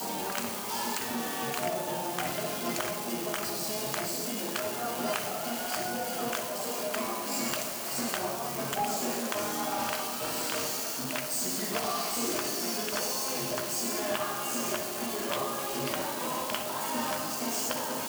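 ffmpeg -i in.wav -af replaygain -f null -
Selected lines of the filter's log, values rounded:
track_gain = +15.7 dB
track_peak = 0.114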